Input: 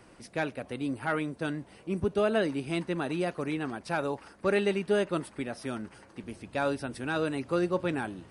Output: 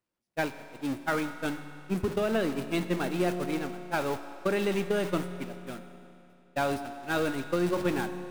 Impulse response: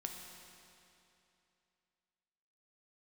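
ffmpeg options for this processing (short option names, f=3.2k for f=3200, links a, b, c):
-filter_complex "[0:a]aeval=exprs='val(0)+0.5*0.0335*sgn(val(0))':c=same,agate=range=-55dB:threshold=-27dB:ratio=16:detection=peak,acompressor=threshold=-26dB:ratio=6,asplit=2[a][b];[1:a]atrim=start_sample=2205[c];[b][c]afir=irnorm=-1:irlink=0,volume=2.5dB[d];[a][d]amix=inputs=2:normalize=0,volume=-4dB"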